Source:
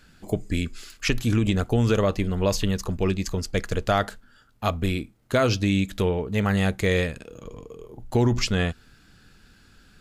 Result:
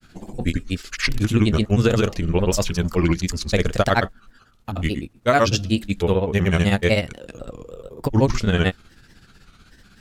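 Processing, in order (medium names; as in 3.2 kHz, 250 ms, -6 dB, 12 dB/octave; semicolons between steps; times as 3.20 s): granulator, grains 16 per s, pitch spread up and down by 3 st; trim +6 dB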